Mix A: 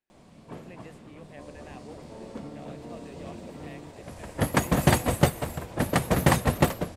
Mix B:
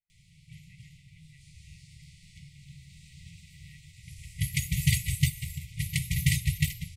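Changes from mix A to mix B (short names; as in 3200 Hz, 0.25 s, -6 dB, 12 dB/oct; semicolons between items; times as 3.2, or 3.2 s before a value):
speech: add LPF 1700 Hz; second sound -5.0 dB; master: add brick-wall FIR band-stop 170–1900 Hz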